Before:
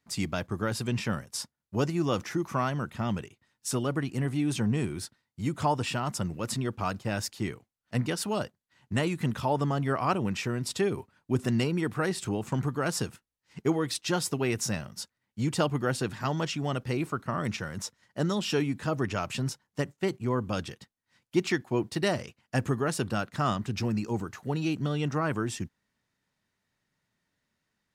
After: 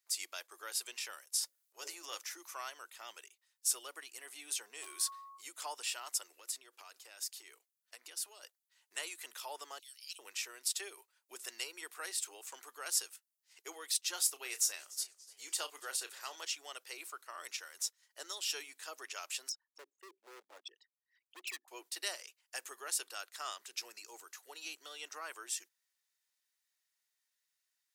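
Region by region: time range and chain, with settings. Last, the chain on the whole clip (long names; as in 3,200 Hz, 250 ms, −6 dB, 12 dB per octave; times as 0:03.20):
0:01.39–0:02.18: mains-hum notches 60/120/180/240/300/360/420/480/540/600 Hz + transient designer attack −8 dB, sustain +10 dB
0:04.81–0:05.40: hard clipping −26.5 dBFS + steady tone 1,100 Hz −45 dBFS + level that may fall only so fast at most 25 dB per second
0:06.39–0:08.43: low shelf with overshoot 200 Hz −9 dB, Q 1.5 + downward compressor 10 to 1, threshold −35 dBFS
0:09.79–0:10.19: inverse Chebyshev high-pass filter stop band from 1,200 Hz, stop band 50 dB + parametric band 4,000 Hz +7 dB 0.61 octaves
0:14.15–0:16.41: notch filter 5,200 Hz, Q 29 + double-tracking delay 31 ms −12 dB + feedback echo with a swinging delay time 289 ms, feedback 47%, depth 158 cents, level −20 dB
0:19.49–0:21.68: spectral envelope exaggerated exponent 3 + hard clipping −31 dBFS
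whole clip: Butterworth high-pass 360 Hz 36 dB per octave; first difference; level +2 dB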